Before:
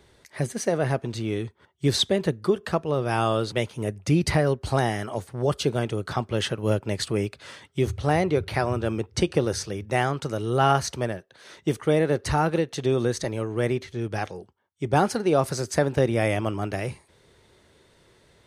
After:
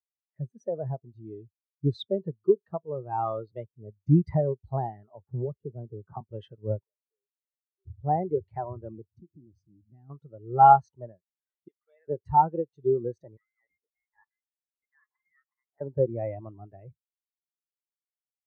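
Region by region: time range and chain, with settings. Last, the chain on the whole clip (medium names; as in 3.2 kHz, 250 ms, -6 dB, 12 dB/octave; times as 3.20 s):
5.27–6.21 s: tape spacing loss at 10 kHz 44 dB + three bands compressed up and down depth 100%
6.84–7.86 s: ladder high-pass 420 Hz, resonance 40% + compression 16:1, threshold -45 dBFS
9.06–10.10 s: resonant low shelf 360 Hz +6.5 dB, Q 3 + compression 2.5:1, threshold -35 dBFS
11.68–12.08 s: high-pass 1.3 kHz + treble shelf 4.8 kHz -9 dB
13.37–15.81 s: compression 8:1, threshold -25 dBFS + high-pass 850 Hz + frequency inversion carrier 2.5 kHz
whole clip: dynamic bell 950 Hz, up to +7 dB, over -41 dBFS, Q 2.2; spectral contrast expander 2.5:1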